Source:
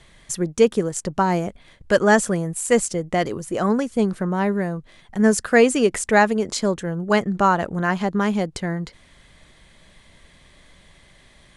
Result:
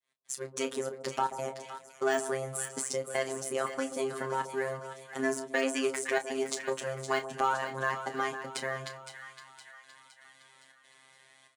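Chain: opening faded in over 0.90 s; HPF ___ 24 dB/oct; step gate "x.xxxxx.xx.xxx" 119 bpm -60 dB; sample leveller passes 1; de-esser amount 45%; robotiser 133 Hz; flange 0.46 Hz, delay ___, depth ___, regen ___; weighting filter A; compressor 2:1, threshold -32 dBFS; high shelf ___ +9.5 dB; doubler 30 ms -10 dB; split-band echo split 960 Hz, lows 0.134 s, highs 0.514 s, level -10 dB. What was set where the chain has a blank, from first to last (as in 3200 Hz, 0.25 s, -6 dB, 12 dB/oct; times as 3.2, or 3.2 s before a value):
54 Hz, 4.2 ms, 4.1 ms, -60%, 8100 Hz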